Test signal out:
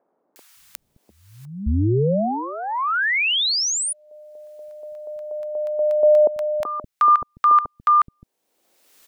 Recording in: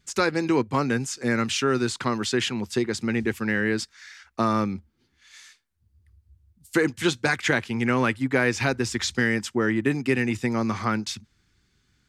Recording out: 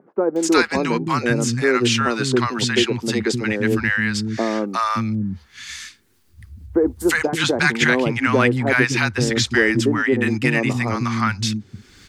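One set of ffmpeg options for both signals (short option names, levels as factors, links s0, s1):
-filter_complex "[0:a]asplit=2[s0][s1];[s1]acompressor=mode=upward:threshold=0.0501:ratio=2.5,volume=1.12[s2];[s0][s2]amix=inputs=2:normalize=0,acrossover=split=240|830[s3][s4][s5];[s5]adelay=360[s6];[s3]adelay=570[s7];[s7][s4][s6]amix=inputs=3:normalize=0,adynamicequalizer=threshold=0.0126:dfrequency=6000:dqfactor=0.7:tfrequency=6000:tqfactor=0.7:attack=5:release=100:ratio=0.375:range=2.5:mode=cutabove:tftype=highshelf,volume=1.12"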